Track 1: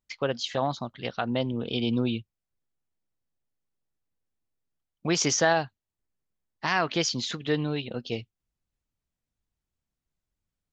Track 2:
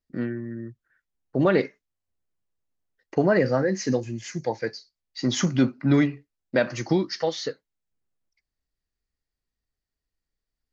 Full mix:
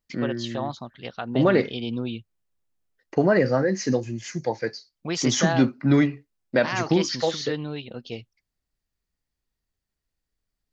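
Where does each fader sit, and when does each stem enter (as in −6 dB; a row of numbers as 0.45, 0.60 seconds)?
−3.0, +1.0 decibels; 0.00, 0.00 seconds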